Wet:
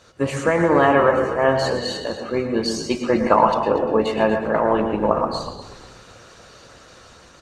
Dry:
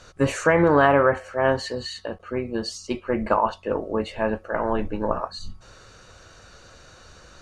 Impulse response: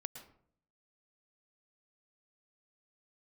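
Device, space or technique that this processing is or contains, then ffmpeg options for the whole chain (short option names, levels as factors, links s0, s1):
far-field microphone of a smart speaker: -filter_complex "[0:a]bandreject=f=1500:w=13,asplit=4[s0][s1][s2][s3];[s1]adelay=242,afreqshift=-64,volume=0.237[s4];[s2]adelay=484,afreqshift=-128,volume=0.0785[s5];[s3]adelay=726,afreqshift=-192,volume=0.0257[s6];[s0][s4][s5][s6]amix=inputs=4:normalize=0[s7];[1:a]atrim=start_sample=2205[s8];[s7][s8]afir=irnorm=-1:irlink=0,highpass=f=130:p=1,dynaudnorm=f=590:g=5:m=2,volume=1.58" -ar 48000 -c:a libopus -b:a 20k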